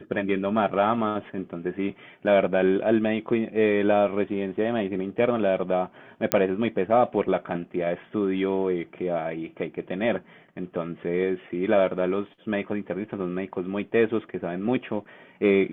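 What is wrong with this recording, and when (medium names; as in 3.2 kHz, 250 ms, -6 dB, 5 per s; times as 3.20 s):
6.32 s: pop -3 dBFS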